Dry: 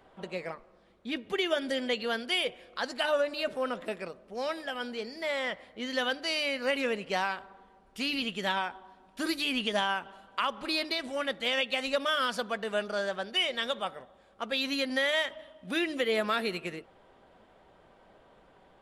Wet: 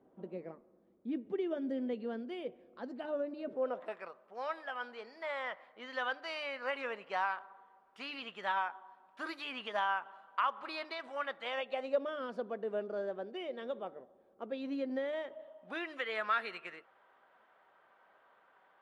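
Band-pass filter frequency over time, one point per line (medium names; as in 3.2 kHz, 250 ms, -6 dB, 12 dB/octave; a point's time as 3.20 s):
band-pass filter, Q 1.6
3.47 s 280 Hz
3.94 s 1.1 kHz
11.42 s 1.1 kHz
12.11 s 370 Hz
15.22 s 370 Hz
16.00 s 1.4 kHz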